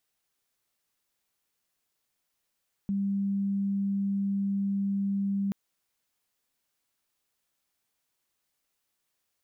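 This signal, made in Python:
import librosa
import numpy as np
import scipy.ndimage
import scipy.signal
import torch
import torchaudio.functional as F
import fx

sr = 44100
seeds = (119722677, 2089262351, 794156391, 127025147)

y = 10.0 ** (-25.5 / 20.0) * np.sin(2.0 * np.pi * (198.0 * (np.arange(round(2.63 * sr)) / sr)))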